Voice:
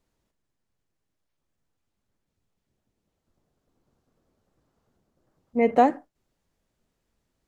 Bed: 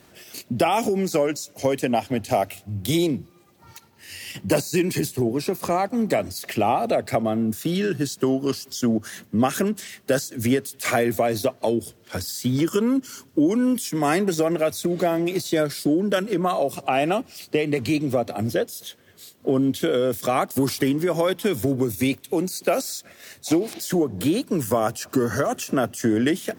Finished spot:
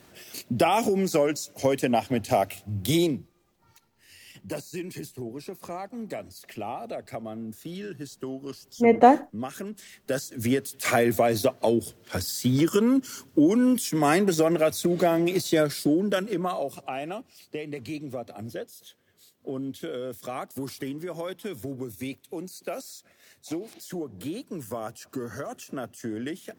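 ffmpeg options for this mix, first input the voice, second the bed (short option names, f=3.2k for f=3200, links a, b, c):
-filter_complex "[0:a]adelay=3250,volume=3dB[a];[1:a]volume=11.5dB,afade=t=out:st=3.03:d=0.29:silence=0.251189,afade=t=in:st=9.67:d=1.41:silence=0.223872,afade=t=out:st=15.57:d=1.43:silence=0.251189[b];[a][b]amix=inputs=2:normalize=0"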